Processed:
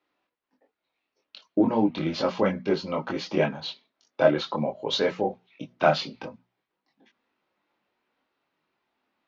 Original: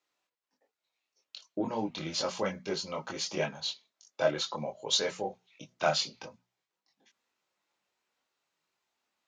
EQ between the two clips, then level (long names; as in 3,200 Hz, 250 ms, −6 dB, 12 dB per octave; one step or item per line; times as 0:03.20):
high-frequency loss of the air 280 metres
parametric band 270 Hz +6.5 dB 0.81 octaves
+8.0 dB